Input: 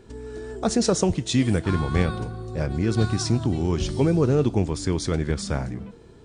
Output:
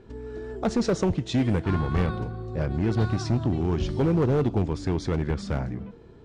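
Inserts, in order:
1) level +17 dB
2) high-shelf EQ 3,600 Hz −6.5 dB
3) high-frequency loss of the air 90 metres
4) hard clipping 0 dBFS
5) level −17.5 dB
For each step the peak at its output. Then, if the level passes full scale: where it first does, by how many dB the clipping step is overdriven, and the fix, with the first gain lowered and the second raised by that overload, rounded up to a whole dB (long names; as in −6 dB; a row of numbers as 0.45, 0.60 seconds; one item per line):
+9.5, +9.0, +9.0, 0.0, −17.5 dBFS
step 1, 9.0 dB
step 1 +8 dB, step 5 −8.5 dB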